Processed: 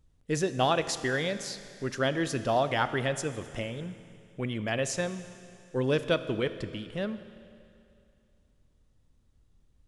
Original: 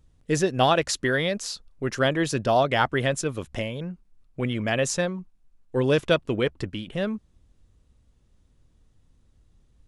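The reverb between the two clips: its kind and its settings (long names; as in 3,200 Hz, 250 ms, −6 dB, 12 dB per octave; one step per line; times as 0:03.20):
four-comb reverb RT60 2.5 s, combs from 27 ms, DRR 11.5 dB
level −5.5 dB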